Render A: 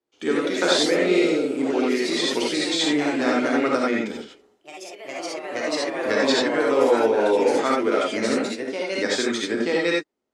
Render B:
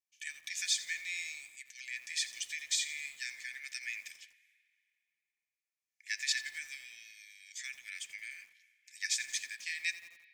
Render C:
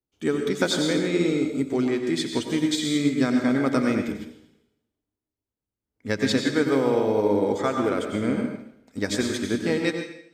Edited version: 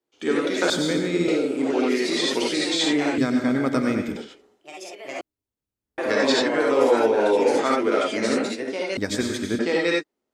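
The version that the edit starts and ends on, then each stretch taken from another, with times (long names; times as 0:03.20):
A
0:00.70–0:01.28: punch in from C
0:03.18–0:04.16: punch in from C
0:05.21–0:05.98: punch in from C
0:08.97–0:09.59: punch in from C
not used: B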